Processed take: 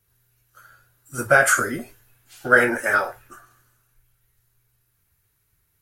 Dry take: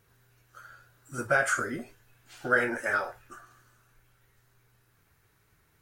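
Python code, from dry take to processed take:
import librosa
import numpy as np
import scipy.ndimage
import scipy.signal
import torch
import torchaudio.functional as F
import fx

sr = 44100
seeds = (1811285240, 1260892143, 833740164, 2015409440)

y = fx.peak_eq(x, sr, hz=12000.0, db=11.5, octaves=0.58)
y = fx.band_widen(y, sr, depth_pct=40)
y = F.gain(torch.from_numpy(y), 6.0).numpy()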